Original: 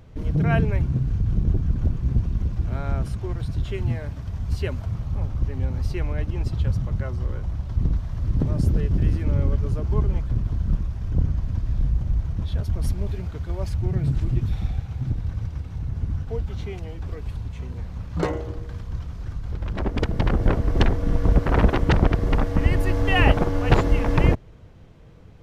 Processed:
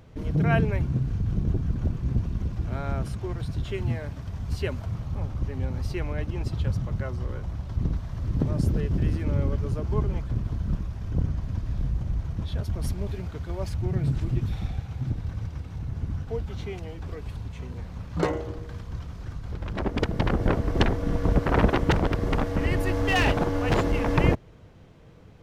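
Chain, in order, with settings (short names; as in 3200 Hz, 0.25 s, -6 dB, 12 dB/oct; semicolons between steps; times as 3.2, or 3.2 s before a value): low shelf 78 Hz -8.5 dB; 21.91–24 overloaded stage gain 17.5 dB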